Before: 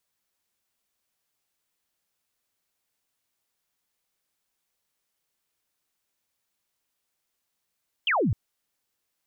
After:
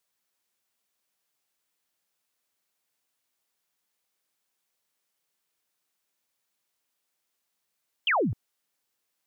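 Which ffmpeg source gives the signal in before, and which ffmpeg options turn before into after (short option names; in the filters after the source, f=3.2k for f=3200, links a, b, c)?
-f lavfi -i "aevalsrc='0.0944*clip(t/0.002,0,1)*clip((0.26-t)/0.002,0,1)*sin(2*PI*3300*0.26/log(85/3300)*(exp(log(85/3300)*t/0.26)-1))':d=0.26:s=44100"
-af "highpass=f=180:p=1"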